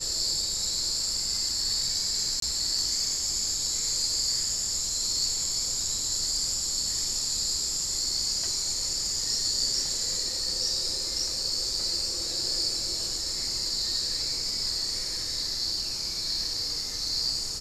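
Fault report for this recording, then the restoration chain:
0:02.40–0:02.42: drop-out 23 ms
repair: repair the gap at 0:02.40, 23 ms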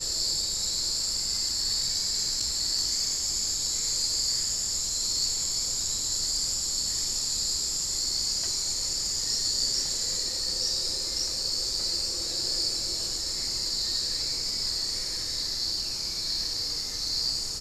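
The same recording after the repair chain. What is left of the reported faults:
none of them is left

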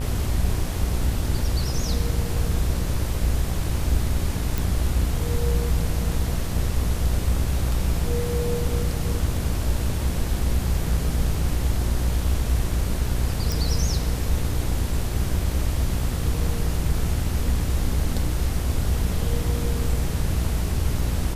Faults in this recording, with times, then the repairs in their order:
mains buzz 60 Hz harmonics 35 −27 dBFS
0:04.58: click
0:13.52: click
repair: click removal
hum removal 60 Hz, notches 35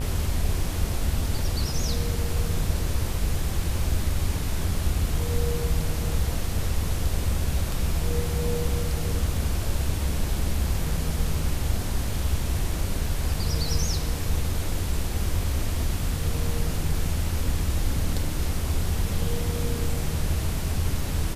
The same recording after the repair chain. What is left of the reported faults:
none of them is left

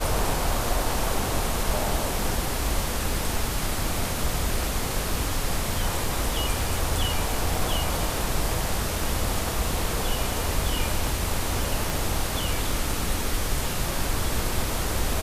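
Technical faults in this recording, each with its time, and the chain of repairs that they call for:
0:11.90: click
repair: click removal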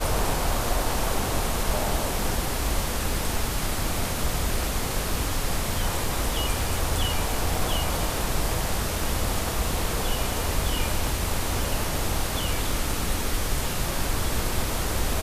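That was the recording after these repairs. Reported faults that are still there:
0:11.90: click

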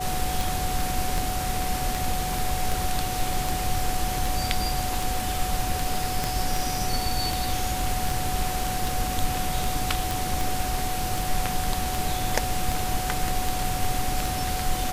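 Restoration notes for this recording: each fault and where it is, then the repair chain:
scratch tick 78 rpm
whistle 740 Hz −30 dBFS
0:06.24: click
0:10.11: click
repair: click removal
notch filter 740 Hz, Q 30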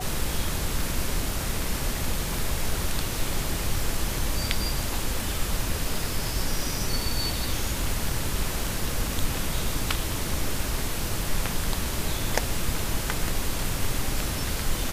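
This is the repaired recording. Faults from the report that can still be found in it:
0:06.24: click

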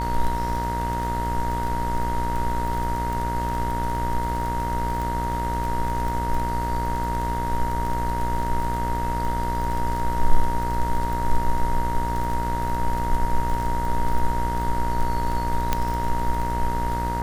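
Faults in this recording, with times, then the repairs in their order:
mains buzz 60 Hz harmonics 35 −28 dBFS
surface crackle 25 per second −26 dBFS
whistle 940 Hz −26 dBFS
0:15.73: click −6 dBFS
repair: click removal
hum removal 60 Hz, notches 35
notch filter 940 Hz, Q 30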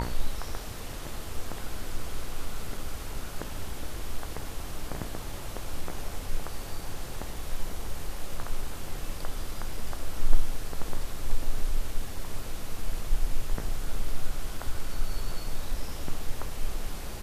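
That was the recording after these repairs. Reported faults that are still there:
0:15.73: click

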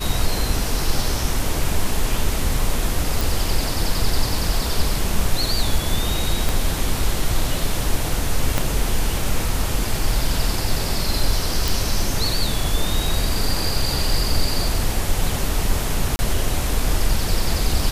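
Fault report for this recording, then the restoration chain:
0:03.21: click
0:06.49: click
0:08.58: click −5 dBFS
0:11.68: click
0:16.16–0:16.19: drop-out 30 ms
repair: click removal
repair the gap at 0:16.16, 30 ms

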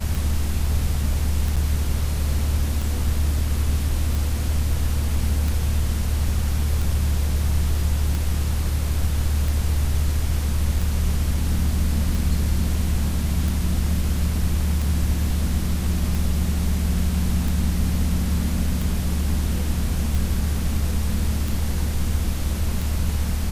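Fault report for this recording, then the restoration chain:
scratch tick 45 rpm
0:01.56–0:01.57: drop-out 6 ms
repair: click removal
repair the gap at 0:01.56, 6 ms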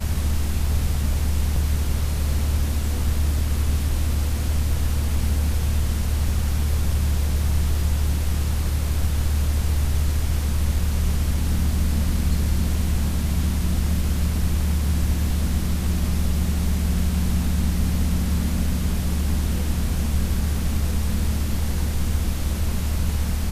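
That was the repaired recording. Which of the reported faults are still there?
none of them is left

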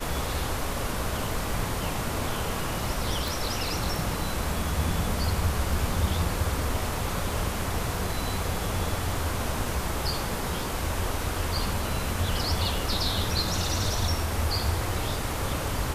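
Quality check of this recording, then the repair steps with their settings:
0:03.28: click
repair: click removal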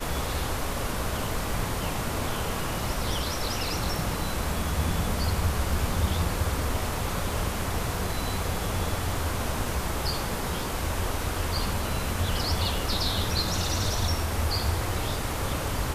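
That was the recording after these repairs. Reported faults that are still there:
none of them is left

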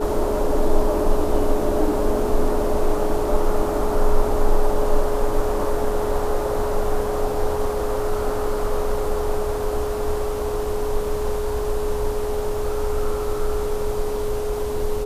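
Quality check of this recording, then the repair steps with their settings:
whistle 420 Hz −24 dBFS
0:07.34: drop-out 2 ms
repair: notch filter 420 Hz, Q 30
repair the gap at 0:07.34, 2 ms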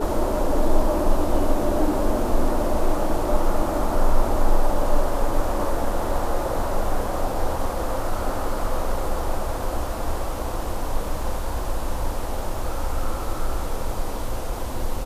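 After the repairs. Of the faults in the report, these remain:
none of them is left

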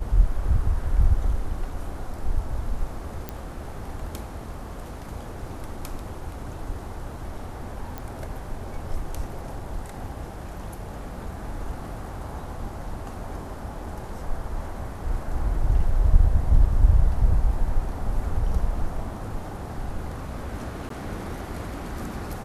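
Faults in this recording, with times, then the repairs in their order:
0:03.29: click −16 dBFS
0:07.98: click −19 dBFS
0:20.89–0:20.90: drop-out 13 ms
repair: click removal
repair the gap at 0:20.89, 13 ms

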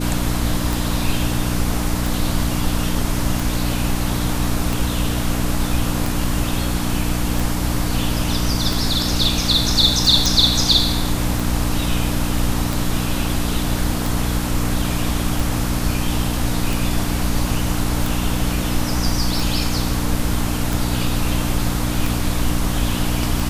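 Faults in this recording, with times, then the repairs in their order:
mains hum 60 Hz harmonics 5 −23 dBFS
scratch tick 45 rpm
0:10.26: click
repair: click removal
hum removal 60 Hz, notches 5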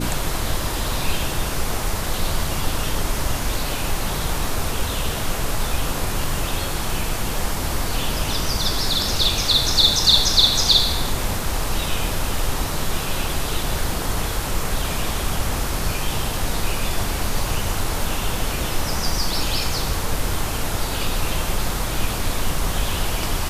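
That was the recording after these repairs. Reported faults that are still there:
none of them is left

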